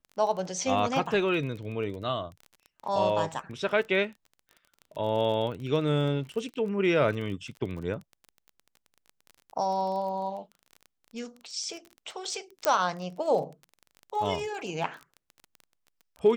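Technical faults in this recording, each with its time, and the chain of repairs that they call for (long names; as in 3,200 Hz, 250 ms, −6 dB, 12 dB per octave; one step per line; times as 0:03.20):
surface crackle 22 per second −36 dBFS
0:12.65: click −8 dBFS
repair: click removal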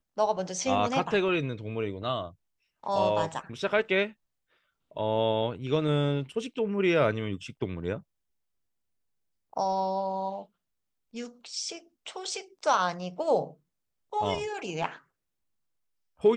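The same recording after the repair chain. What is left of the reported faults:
none of them is left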